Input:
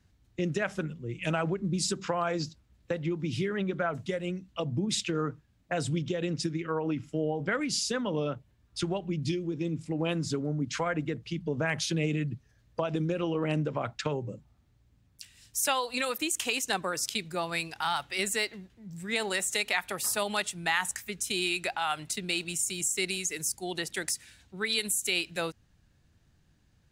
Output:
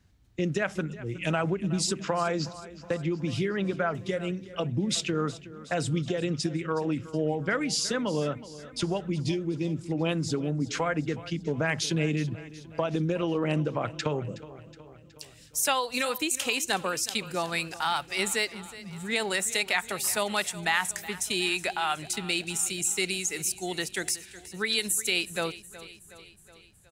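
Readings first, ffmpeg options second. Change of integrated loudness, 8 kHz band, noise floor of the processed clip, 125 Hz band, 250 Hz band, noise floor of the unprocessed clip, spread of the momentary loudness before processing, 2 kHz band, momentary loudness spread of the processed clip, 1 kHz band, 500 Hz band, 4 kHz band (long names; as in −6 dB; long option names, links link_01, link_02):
+2.0 dB, +2.0 dB, −53 dBFS, +2.0 dB, +2.0 dB, −66 dBFS, 7 LU, +2.0 dB, 8 LU, +2.0 dB, +2.0 dB, +2.0 dB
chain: -af "aecho=1:1:369|738|1107|1476|1845:0.141|0.0819|0.0475|0.0276|0.016,volume=2dB"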